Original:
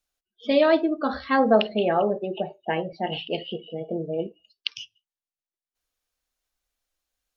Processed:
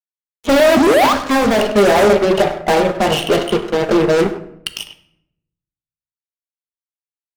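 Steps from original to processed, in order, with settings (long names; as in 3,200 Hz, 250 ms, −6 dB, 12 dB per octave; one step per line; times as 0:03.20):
parametric band 430 Hz +7.5 dB 2.4 octaves
mains-hum notches 60/120/180 Hz
in parallel at −1 dB: downward compressor, threshold −27 dBFS, peak gain reduction 19 dB
0:00.76–0:01.13: on the sum: sound drawn into the spectrogram rise 220–1,300 Hz −12 dBFS
fuzz pedal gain 24 dB, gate −30 dBFS
0:01.06–0:01.76: tuned comb filter 64 Hz, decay 0.17 s, harmonics all, mix 50%
far-end echo of a speakerphone 100 ms, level −8 dB
convolution reverb RT60 0.75 s, pre-delay 5 ms, DRR 8.5 dB
level +3 dB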